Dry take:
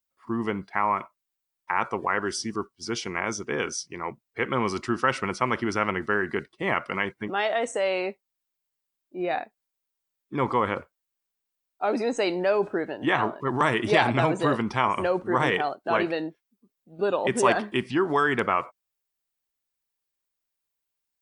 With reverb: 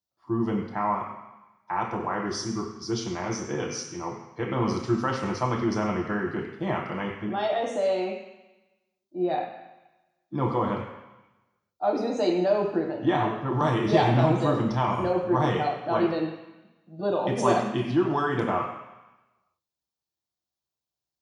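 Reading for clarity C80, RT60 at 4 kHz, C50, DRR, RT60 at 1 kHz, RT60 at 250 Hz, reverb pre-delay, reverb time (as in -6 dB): 7.5 dB, 1.1 s, 5.5 dB, -0.5 dB, 1.1 s, 1.0 s, 3 ms, 1.0 s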